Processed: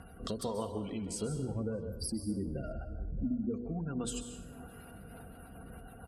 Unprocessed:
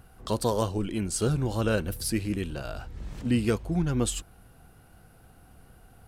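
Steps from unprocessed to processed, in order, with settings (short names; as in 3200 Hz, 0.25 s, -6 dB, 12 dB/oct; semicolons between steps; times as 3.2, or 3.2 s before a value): 1.41–3.54 spectral contrast raised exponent 1.9; notches 60/120/180/240/300/360/420/480 Hz; spectral gate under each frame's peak -30 dB strong; HPF 56 Hz; comb 4.3 ms, depth 41%; compressor 12:1, threshold -40 dBFS, peak gain reduction 20 dB; rotary speaker horn 1.2 Hz, later 7 Hz, at 4.76; narrowing echo 0.622 s, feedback 49%, band-pass 450 Hz, level -16 dB; plate-style reverb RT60 0.75 s, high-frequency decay 0.85×, pre-delay 0.12 s, DRR 8 dB; gain +8 dB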